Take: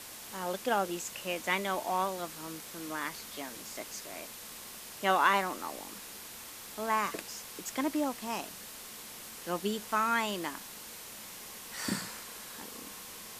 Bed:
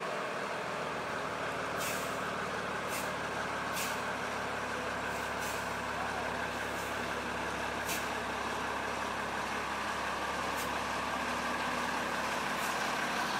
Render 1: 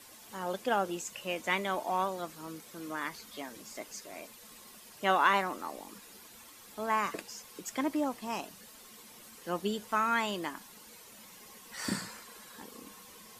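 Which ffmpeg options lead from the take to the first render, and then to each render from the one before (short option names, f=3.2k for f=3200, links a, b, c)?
-af "afftdn=nr=10:nf=-47"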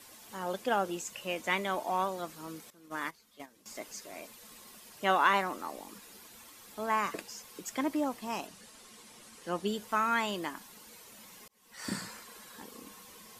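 -filter_complex "[0:a]asettb=1/sr,asplit=3[a][b][c];[a]atrim=end=2.704[d];[b]atrim=start=2.7:end=3.66,asetpts=PTS-STARTPTS,afade=t=in:d=0.004:c=qsin,afade=t=out:st=0.956:d=0.004:c=qsin,agate=range=-15dB:threshold=-40dB:ratio=16:release=100:detection=peak[e];[c]atrim=start=3.656[f];[d][e]acrossfade=d=0.004:c1=hsin:c2=qsin[g];[g][f]acrossfade=d=0.004:c1=qsin:c2=hsin,asettb=1/sr,asplit=3[h][i][j];[h]atrim=end=8.474[k];[i]atrim=start=8.47:end=9.67,asetpts=PTS-STARTPTS,afade=t=in:d=0.004:c=qsin,afade=t=out:st=1.196:d=0.004:c=qsin,lowpass=f=11k:w=0.5412,lowpass=f=11k:w=1.3066[l];[j]atrim=start=9.666[m];[k][l]acrossfade=d=0.004:c1=hsin:c2=qsin[n];[n][m]acrossfade=d=0.004:c1=qsin:c2=hsin,asplit=2[o][p];[o]atrim=end=11.48,asetpts=PTS-STARTPTS,afade=t=out:st=11.476:d=0.004:c=hsin[q];[p]atrim=start=11.48,asetpts=PTS-STARTPTS,afade=t=in:d=0.58[r];[q][r]concat=n=2:v=0:a=1"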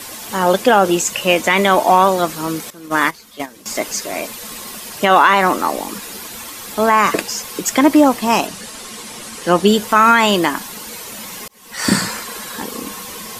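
-af "acontrast=67,alimiter=level_in=15dB:limit=-1dB:release=50:level=0:latency=1"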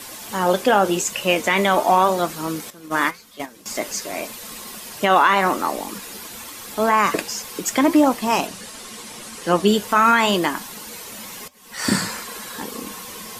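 -af "flanger=delay=4.2:depth=8:regen=-77:speed=0.86:shape=triangular"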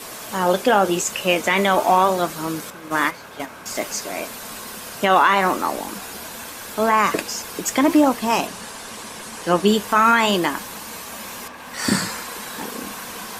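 -filter_complex "[1:a]volume=-4dB[a];[0:a][a]amix=inputs=2:normalize=0"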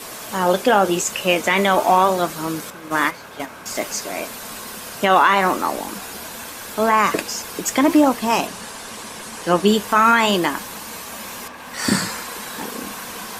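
-af "volume=1dB"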